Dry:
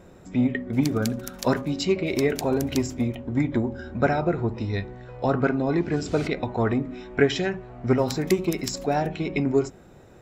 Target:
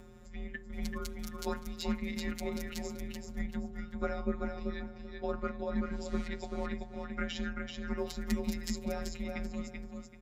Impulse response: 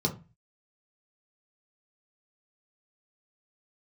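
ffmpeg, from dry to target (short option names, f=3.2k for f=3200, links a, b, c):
-filter_complex "[0:a]asplit=2[a][b];[b]aecho=0:1:385|770|1155:0.596|0.137|0.0315[c];[a][c]amix=inputs=2:normalize=0,acompressor=mode=upward:threshold=-34dB:ratio=2.5,afftfilt=real='hypot(re,im)*cos(PI*b)':imag='0':win_size=1024:overlap=0.75,afreqshift=-130,volume=-8.5dB"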